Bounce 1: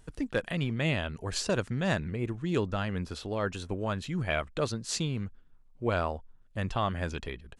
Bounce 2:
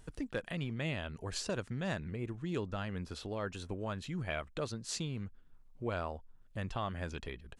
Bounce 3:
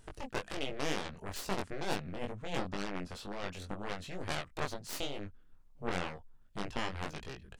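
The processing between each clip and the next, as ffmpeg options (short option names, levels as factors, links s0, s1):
-af "acompressor=threshold=0.00447:ratio=1.5"
-af "aeval=exprs='0.0794*(cos(1*acos(clip(val(0)/0.0794,-1,1)))-cos(1*PI/2))+0.0316*(cos(4*acos(clip(val(0)/0.0794,-1,1)))-cos(4*PI/2))+0.0282*(cos(7*acos(clip(val(0)/0.0794,-1,1)))-cos(7*PI/2))':c=same,flanger=delay=19.5:depth=3.1:speed=2.1"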